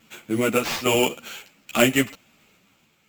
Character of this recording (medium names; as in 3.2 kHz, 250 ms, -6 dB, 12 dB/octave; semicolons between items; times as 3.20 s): aliases and images of a low sample rate 10 kHz, jitter 0%; random-step tremolo; a shimmering, thickened sound